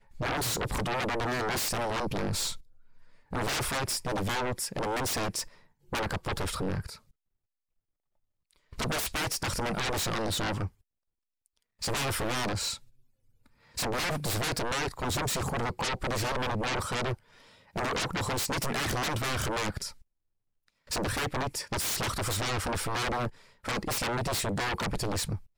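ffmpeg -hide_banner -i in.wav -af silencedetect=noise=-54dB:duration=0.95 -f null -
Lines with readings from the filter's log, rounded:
silence_start: 7.11
silence_end: 8.51 | silence_duration: 1.40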